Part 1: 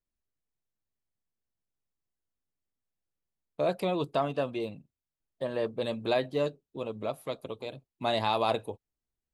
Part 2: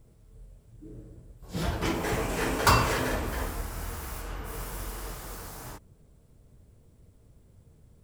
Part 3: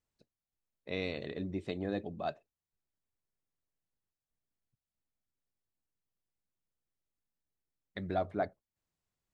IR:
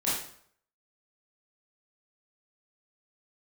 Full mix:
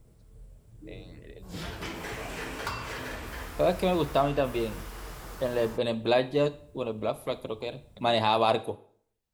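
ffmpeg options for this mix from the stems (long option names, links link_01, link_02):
-filter_complex "[0:a]volume=3dB,asplit=2[link_01][link_02];[link_02]volume=-22.5dB[link_03];[1:a]acrossover=split=1500|4900[link_04][link_05][link_06];[link_04]acompressor=threshold=-38dB:ratio=4[link_07];[link_05]acompressor=threshold=-39dB:ratio=4[link_08];[link_06]acompressor=threshold=-53dB:ratio=4[link_09];[link_07][link_08][link_09]amix=inputs=3:normalize=0,volume=0dB[link_10];[2:a]acompressor=threshold=-41dB:ratio=6,asplit=2[link_11][link_12];[link_12]afreqshift=2.3[link_13];[link_11][link_13]amix=inputs=2:normalize=1,volume=-1dB[link_14];[3:a]atrim=start_sample=2205[link_15];[link_03][link_15]afir=irnorm=-1:irlink=0[link_16];[link_01][link_10][link_14][link_16]amix=inputs=4:normalize=0"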